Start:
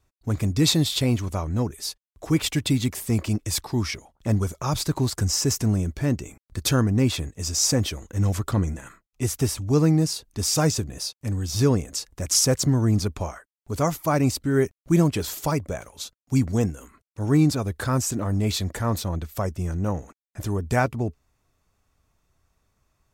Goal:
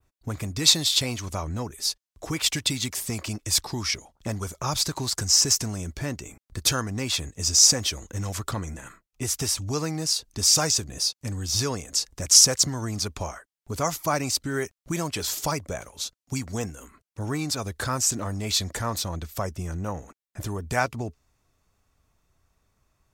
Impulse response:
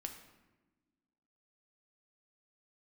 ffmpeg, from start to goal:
-filter_complex "[0:a]adynamicequalizer=threshold=0.01:dfrequency=5600:dqfactor=0.86:tfrequency=5600:tqfactor=0.86:attack=5:release=100:ratio=0.375:range=3.5:mode=boostabove:tftype=bell,acrossover=split=610|2100[s0][s1][s2];[s0]acompressor=threshold=0.0355:ratio=6[s3];[s3][s1][s2]amix=inputs=3:normalize=0"

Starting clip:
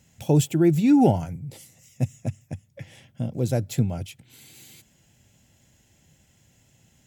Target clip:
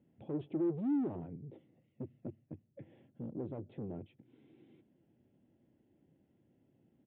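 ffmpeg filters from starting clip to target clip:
-af "alimiter=limit=0.188:level=0:latency=1:release=10,aresample=8000,asoftclip=type=tanh:threshold=0.0355,aresample=44100,bandpass=f=320:t=q:w=2.4:csg=0,volume=1.12"

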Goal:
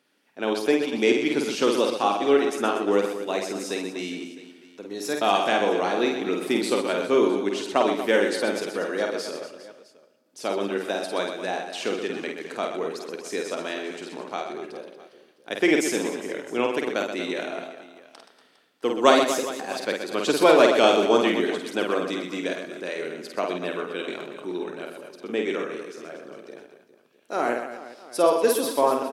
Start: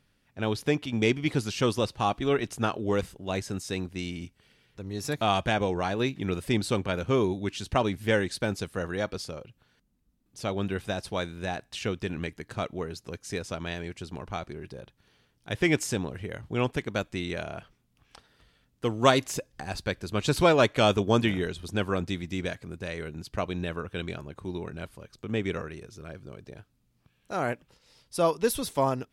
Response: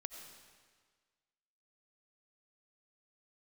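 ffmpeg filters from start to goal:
-filter_complex "[0:a]highpass=f=280:w=0.5412,highpass=f=280:w=1.3066,lowshelf=f=490:g=5,aecho=1:1:50|125|237.5|406.2|659.4:0.631|0.398|0.251|0.158|0.1,asplit=2[s0][s1];[1:a]atrim=start_sample=2205[s2];[s1][s2]afir=irnorm=-1:irlink=0,volume=0.596[s3];[s0][s3]amix=inputs=2:normalize=0,volume=0.891"

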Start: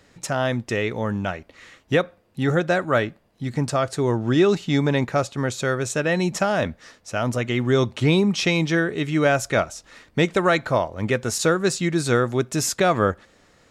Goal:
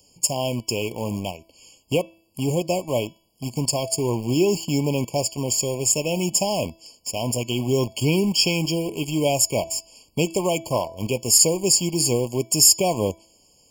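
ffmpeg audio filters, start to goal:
-filter_complex "[0:a]aexciter=amount=5.3:drive=6.4:freq=3400,asplit=2[s0][s1];[s1]acrusher=bits=3:mix=0:aa=0.000001,volume=0.668[s2];[s0][s2]amix=inputs=2:normalize=0,bandreject=f=329.5:t=h:w=4,bandreject=f=659:t=h:w=4,bandreject=f=988.5:t=h:w=4,bandreject=f=1318:t=h:w=4,bandreject=f=1647.5:t=h:w=4,bandreject=f=1977:t=h:w=4,bandreject=f=2306.5:t=h:w=4,bandreject=f=2636:t=h:w=4,bandreject=f=2965.5:t=h:w=4,bandreject=f=3295:t=h:w=4,bandreject=f=3624.5:t=h:w=4,bandreject=f=3954:t=h:w=4,bandreject=f=4283.5:t=h:w=4,bandreject=f=4613:t=h:w=4,bandreject=f=4942.5:t=h:w=4,bandreject=f=5272:t=h:w=4,bandreject=f=5601.5:t=h:w=4,bandreject=f=5931:t=h:w=4,bandreject=f=6260.5:t=h:w=4,bandreject=f=6590:t=h:w=4,bandreject=f=6919.5:t=h:w=4,afftfilt=real='re*eq(mod(floor(b*sr/1024/1100),2),0)':imag='im*eq(mod(floor(b*sr/1024/1100),2),0)':win_size=1024:overlap=0.75,volume=0.473"

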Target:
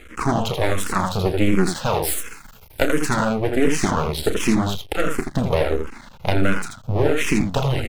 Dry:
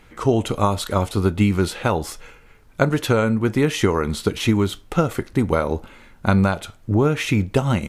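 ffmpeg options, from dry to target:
-filter_complex "[0:a]asettb=1/sr,asplit=3[s0][s1][s2];[s0]atrim=end=2.024[s3];[s1]atrim=start=2.02:end=2.98,asetpts=PTS-STARTPTS,afade=t=in:d=0.004:c=qsin,afade=t=out:st=0.956:d=0.004:c=qsin,aemphasis=mode=production:type=50fm[s4];[s2]atrim=start=2.976[s5];[s3][s4]acrossfade=d=0.004:c1=hsin:c2=qsin[s6];[s6][s5]acrossfade=d=0.004:c1=qsin:c2=hsin,asplit=2[s7][s8];[s8]acompressor=threshold=0.0398:ratio=6,volume=1.26[s9];[s7][s9]amix=inputs=2:normalize=0,aecho=1:1:32.07|81.63:0.316|0.562,aeval=exprs='max(val(0),0)':c=same,asplit=2[s10][s11];[s11]afreqshift=-1.4[s12];[s10][s12]amix=inputs=2:normalize=1,volume=1.5"

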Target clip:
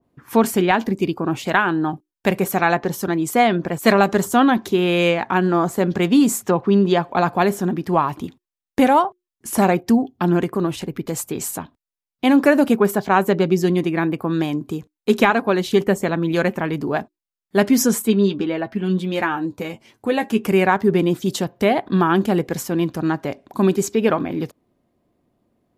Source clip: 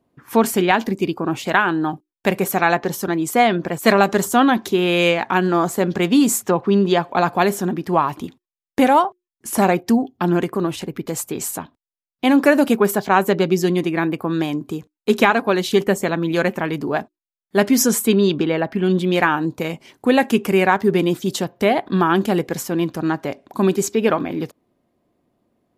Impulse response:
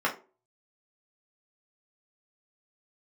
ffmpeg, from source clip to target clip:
-filter_complex "[0:a]lowshelf=f=150:g=5.5,asettb=1/sr,asplit=3[s0][s1][s2];[s0]atrim=end=18.024[s3];[s1]atrim=start=18.02:end=20.44,asetpts=PTS-STARTPTS,afade=t=in:d=0.004:c=qsin,afade=t=out:st=2.416:d=0.004:c=qsin,flanger=delay=8.9:depth=1.2:regen=29:speed=1.6:shape=sinusoidal[s4];[s2]atrim=start=20.436[s5];[s3][s4]acrossfade=d=0.004:c1=hsin:c2=qsin[s6];[s6][s5]acrossfade=d=0.004:c1=qsin:c2=hsin,adynamicequalizer=threshold=0.0355:dfrequency=2200:dqfactor=0.7:tfrequency=2200:tqfactor=0.7:attack=5:release=100:ratio=0.375:range=2.5:mode=cutabove:tftype=highshelf,volume=0.891"

